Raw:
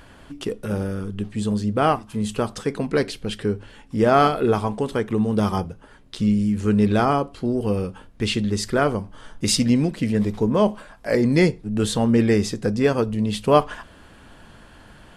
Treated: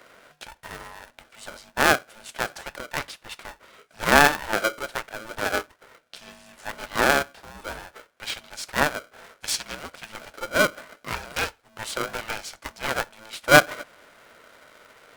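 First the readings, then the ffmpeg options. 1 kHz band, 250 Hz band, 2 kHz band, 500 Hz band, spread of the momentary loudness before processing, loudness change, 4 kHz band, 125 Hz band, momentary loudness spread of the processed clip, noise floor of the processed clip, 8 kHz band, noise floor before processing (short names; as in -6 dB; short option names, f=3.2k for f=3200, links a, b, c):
-1.5 dB, -14.5 dB, +8.5 dB, -6.5 dB, 11 LU, -2.0 dB, +1.0 dB, -15.0 dB, 23 LU, -63 dBFS, +0.5 dB, -48 dBFS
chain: -af "aeval=exprs='0.794*(cos(1*acos(clip(val(0)/0.794,-1,1)))-cos(1*PI/2))+0.1*(cos(3*acos(clip(val(0)/0.794,-1,1)))-cos(3*PI/2))+0.0112*(cos(7*acos(clip(val(0)/0.794,-1,1)))-cos(7*PI/2))':c=same,highpass=f=1k:t=q:w=4.9,aeval=exprs='val(0)*sgn(sin(2*PI*440*n/s))':c=same,volume=-1dB"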